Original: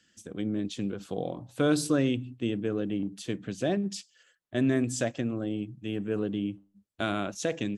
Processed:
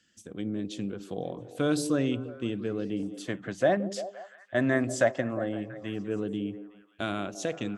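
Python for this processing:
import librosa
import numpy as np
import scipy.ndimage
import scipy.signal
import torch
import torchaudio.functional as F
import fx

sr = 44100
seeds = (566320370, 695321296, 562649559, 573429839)

y = fx.spec_box(x, sr, start_s=3.27, length_s=2.62, low_hz=510.0, high_hz=2200.0, gain_db=10)
y = fx.echo_stepped(y, sr, ms=172, hz=360.0, octaves=0.7, feedback_pct=70, wet_db=-9)
y = F.gain(torch.from_numpy(y), -2.0).numpy()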